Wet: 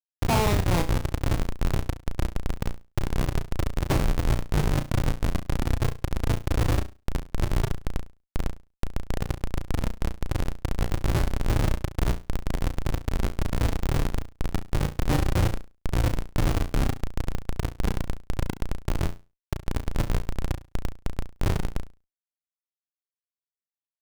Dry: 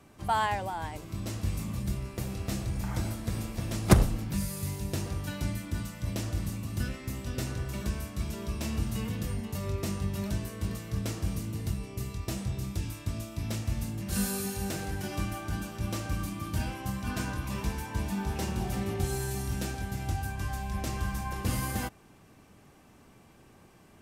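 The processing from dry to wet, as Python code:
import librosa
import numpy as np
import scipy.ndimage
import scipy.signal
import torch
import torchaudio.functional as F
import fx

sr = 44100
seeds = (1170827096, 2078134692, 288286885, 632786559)

p1 = fx.halfwave_hold(x, sr)
p2 = fx.over_compress(p1, sr, threshold_db=-33.0, ratio=-0.5)
p3 = p1 + F.gain(torch.from_numpy(p2), 2.0).numpy()
p4 = fx.lowpass(p3, sr, hz=1700.0, slope=6)
p5 = fx.fixed_phaser(p4, sr, hz=320.0, stages=8)
p6 = fx.schmitt(p5, sr, flips_db=-21.5)
p7 = p6 + fx.room_flutter(p6, sr, wall_m=5.9, rt60_s=0.28, dry=0)
y = F.gain(torch.from_numpy(p7), 7.5).numpy()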